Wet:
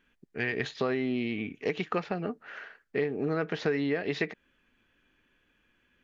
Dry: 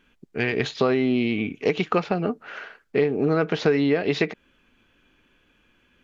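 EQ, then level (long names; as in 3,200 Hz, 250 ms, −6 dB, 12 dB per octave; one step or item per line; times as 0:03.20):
parametric band 1,800 Hz +7 dB 0.31 octaves
−8.5 dB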